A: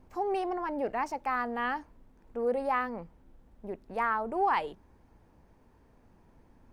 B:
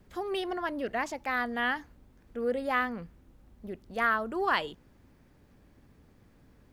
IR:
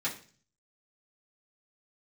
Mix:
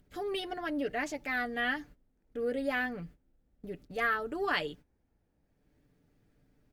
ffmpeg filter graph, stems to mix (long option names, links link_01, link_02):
-filter_complex "[0:a]volume=-14dB[link_01];[1:a]agate=range=-42dB:threshold=-49dB:ratio=16:detection=peak,aecho=1:1:6.8:0.75,acompressor=mode=upward:threshold=-41dB:ratio=2.5,volume=-2.5dB[link_02];[link_01][link_02]amix=inputs=2:normalize=0,equalizer=frequency=1000:width=3.3:gain=-10.5"